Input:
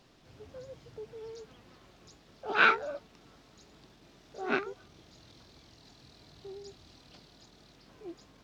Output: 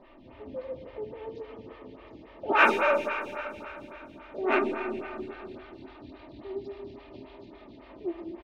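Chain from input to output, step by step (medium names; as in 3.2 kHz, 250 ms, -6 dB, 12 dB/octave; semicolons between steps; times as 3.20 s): low-pass 2.8 kHz 24 dB/octave; peaking EQ 1.5 kHz -11 dB 0.24 oct; comb 3.3 ms, depth 58%; in parallel at -4.5 dB: saturation -29 dBFS, distortion -7 dB; on the sum: Schroeder reverb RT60 3.2 s, combs from 27 ms, DRR 3 dB; lamp-driven phase shifter 3.6 Hz; trim +6.5 dB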